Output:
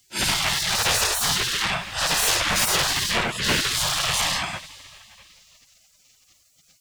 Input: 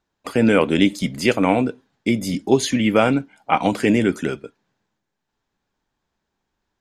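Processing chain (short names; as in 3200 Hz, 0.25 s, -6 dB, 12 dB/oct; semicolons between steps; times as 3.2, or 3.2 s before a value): phase scrambler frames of 0.2 s; overdrive pedal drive 37 dB, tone 5100 Hz, clips at -3.5 dBFS; in parallel at +1 dB: limiter -12 dBFS, peak gain reduction 8.5 dB; on the sum: plate-style reverb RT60 3.5 s, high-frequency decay 0.75×, DRR 18.5 dB; compressor, threshold -11 dBFS, peak gain reduction 7.5 dB; spectral gate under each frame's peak -20 dB weak; bell 170 Hz +5.5 dB 1.8 oct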